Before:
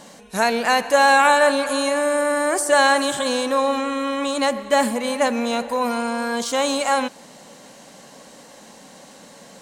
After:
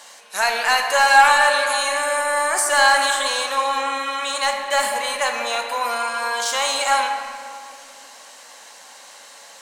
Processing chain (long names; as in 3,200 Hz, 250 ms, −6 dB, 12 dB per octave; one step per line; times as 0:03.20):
high-pass filter 1,000 Hz 12 dB per octave
soft clipping −11 dBFS, distortion −18 dB
convolution reverb RT60 2.4 s, pre-delay 6 ms, DRR 3 dB
level +3.5 dB